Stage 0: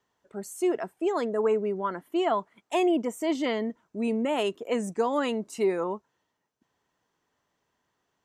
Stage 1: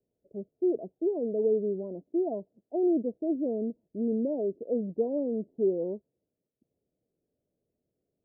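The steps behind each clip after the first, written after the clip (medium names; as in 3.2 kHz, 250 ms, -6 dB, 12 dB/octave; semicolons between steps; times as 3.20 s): steep low-pass 610 Hz 48 dB/octave; trim -1 dB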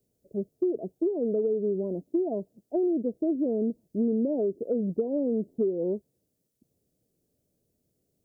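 dynamic bell 390 Hz, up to +4 dB, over -39 dBFS, Q 2.2; compression 10:1, threshold -28 dBFS, peak gain reduction 10.5 dB; tone controls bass +6 dB, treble +12 dB; trim +3.5 dB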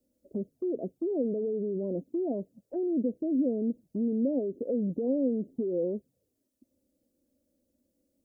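peak limiter -27 dBFS, peak gain reduction 10.5 dB; touch-sensitive flanger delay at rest 3.6 ms, full sweep at -32 dBFS; small resonant body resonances 260/520 Hz, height 8 dB, ringing for 35 ms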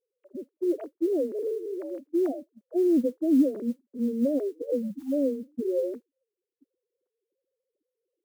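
formants replaced by sine waves; modulation noise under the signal 33 dB; spectral selection erased 4.90–5.12 s, 330–760 Hz; trim +3 dB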